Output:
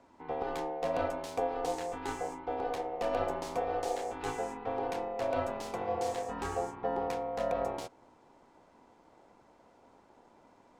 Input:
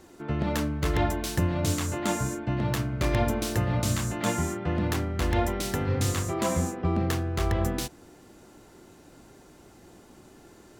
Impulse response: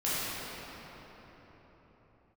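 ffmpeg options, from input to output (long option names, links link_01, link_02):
-af "lowshelf=frequency=220:gain=6,adynamicsmooth=sensitivity=8:basefreq=5900,aeval=exprs='val(0)*sin(2*PI*610*n/s)':channel_layout=same,volume=-8.5dB"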